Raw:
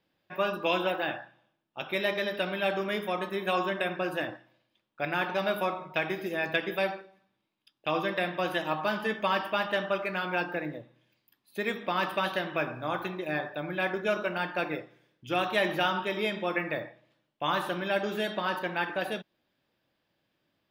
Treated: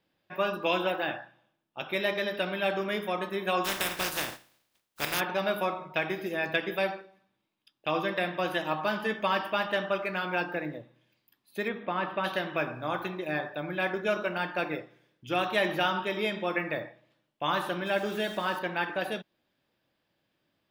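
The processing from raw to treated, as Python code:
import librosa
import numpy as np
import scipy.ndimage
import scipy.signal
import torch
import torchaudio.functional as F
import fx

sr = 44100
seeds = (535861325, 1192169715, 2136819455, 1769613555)

y = fx.spec_flatten(x, sr, power=0.29, at=(3.64, 5.19), fade=0.02)
y = fx.air_absorb(y, sr, metres=370.0, at=(11.67, 12.23), fade=0.02)
y = fx.sample_gate(y, sr, floor_db=-44.5, at=(17.85, 18.57), fade=0.02)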